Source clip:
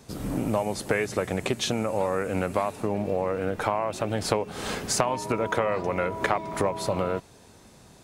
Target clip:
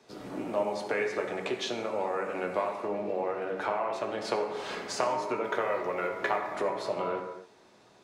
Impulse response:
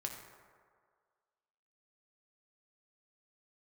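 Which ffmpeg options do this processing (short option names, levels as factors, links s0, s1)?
-filter_complex "[0:a]acrossover=split=240 5700:gain=0.112 1 0.158[s0][s1][s2];[s0][s1][s2]amix=inputs=3:normalize=0,acrossover=split=150[s3][s4];[s3]alimiter=level_in=16.8:limit=0.0631:level=0:latency=1,volume=0.0596[s5];[s5][s4]amix=inputs=2:normalize=0,asettb=1/sr,asplit=3[s6][s7][s8];[s6]atrim=end=5.444[s9];[s7]atrim=start=5.44:end=6.55,asetpts=PTS-STARTPTS,afade=t=in:d=0.004:c=qsin,afade=t=out:st=1.106:d=0.004:c=qsin,aeval=exprs='sgn(val(0))*max(abs(val(0))-0.00299,0)':c=same[s10];[s8]atrim=start=6.546[s11];[s9][s10]acrossfade=d=0.004:c1=hsin:c2=qsin[s12];[s12][s11]acrossfade=d=0.004:c1=qsin:c2=hsin[s13];[1:a]atrim=start_sample=2205,afade=t=out:st=0.33:d=0.01,atrim=end_sample=14994[s14];[s13][s14]afir=irnorm=-1:irlink=0,volume=0.75"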